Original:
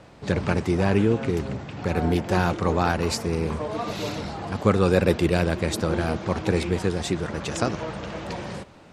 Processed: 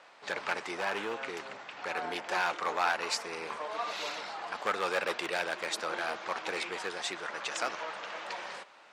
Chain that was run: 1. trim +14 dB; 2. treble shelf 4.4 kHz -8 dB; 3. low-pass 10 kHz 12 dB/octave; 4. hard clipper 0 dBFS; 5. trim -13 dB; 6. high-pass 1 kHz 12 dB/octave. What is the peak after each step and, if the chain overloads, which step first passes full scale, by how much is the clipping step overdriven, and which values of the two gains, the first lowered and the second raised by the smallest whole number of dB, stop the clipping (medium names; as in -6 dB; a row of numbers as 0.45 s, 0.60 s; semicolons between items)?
+10.0 dBFS, +9.5 dBFS, +9.5 dBFS, 0.0 dBFS, -13.0 dBFS, -14.0 dBFS; step 1, 9.5 dB; step 1 +4 dB, step 5 -3 dB